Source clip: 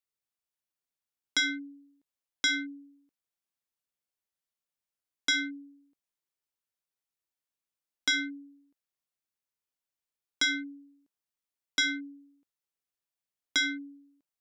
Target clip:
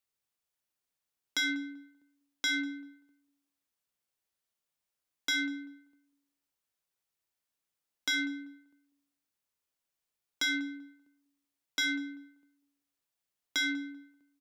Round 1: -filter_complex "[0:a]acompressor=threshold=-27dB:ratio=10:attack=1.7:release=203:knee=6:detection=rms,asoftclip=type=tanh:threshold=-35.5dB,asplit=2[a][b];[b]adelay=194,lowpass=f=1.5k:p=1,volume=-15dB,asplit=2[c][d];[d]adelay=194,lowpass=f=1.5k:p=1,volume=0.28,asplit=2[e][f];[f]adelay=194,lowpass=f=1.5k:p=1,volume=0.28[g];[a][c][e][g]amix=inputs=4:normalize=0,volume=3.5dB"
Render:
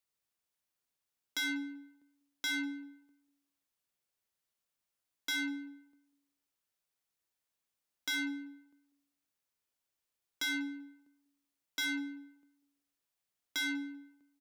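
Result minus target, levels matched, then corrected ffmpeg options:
soft clip: distortion +9 dB
-filter_complex "[0:a]acompressor=threshold=-27dB:ratio=10:attack=1.7:release=203:knee=6:detection=rms,asoftclip=type=tanh:threshold=-27.5dB,asplit=2[a][b];[b]adelay=194,lowpass=f=1.5k:p=1,volume=-15dB,asplit=2[c][d];[d]adelay=194,lowpass=f=1.5k:p=1,volume=0.28,asplit=2[e][f];[f]adelay=194,lowpass=f=1.5k:p=1,volume=0.28[g];[a][c][e][g]amix=inputs=4:normalize=0,volume=3.5dB"

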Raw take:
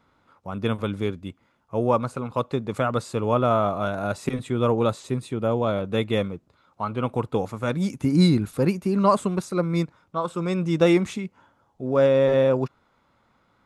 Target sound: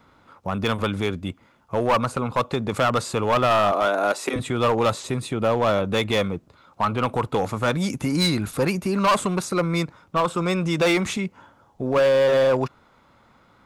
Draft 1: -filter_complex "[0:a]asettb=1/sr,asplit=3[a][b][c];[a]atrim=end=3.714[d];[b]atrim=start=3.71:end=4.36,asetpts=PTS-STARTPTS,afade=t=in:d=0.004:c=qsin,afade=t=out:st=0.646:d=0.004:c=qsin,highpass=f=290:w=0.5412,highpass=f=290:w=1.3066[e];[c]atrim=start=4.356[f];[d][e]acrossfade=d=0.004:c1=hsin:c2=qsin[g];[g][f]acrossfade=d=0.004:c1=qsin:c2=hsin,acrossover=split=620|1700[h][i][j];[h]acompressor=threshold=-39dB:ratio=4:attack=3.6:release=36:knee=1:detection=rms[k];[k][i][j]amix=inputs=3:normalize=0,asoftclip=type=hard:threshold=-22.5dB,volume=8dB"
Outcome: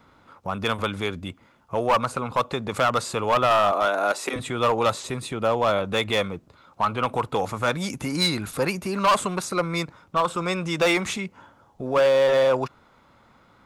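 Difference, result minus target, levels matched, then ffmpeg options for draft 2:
compressor: peak gain reduction +5.5 dB
-filter_complex "[0:a]asettb=1/sr,asplit=3[a][b][c];[a]atrim=end=3.714[d];[b]atrim=start=3.71:end=4.36,asetpts=PTS-STARTPTS,afade=t=in:d=0.004:c=qsin,afade=t=out:st=0.646:d=0.004:c=qsin,highpass=f=290:w=0.5412,highpass=f=290:w=1.3066[e];[c]atrim=start=4.356[f];[d][e]acrossfade=d=0.004:c1=hsin:c2=qsin[g];[g][f]acrossfade=d=0.004:c1=qsin:c2=hsin,acrossover=split=620|1700[h][i][j];[h]acompressor=threshold=-31.5dB:ratio=4:attack=3.6:release=36:knee=1:detection=rms[k];[k][i][j]amix=inputs=3:normalize=0,asoftclip=type=hard:threshold=-22.5dB,volume=8dB"

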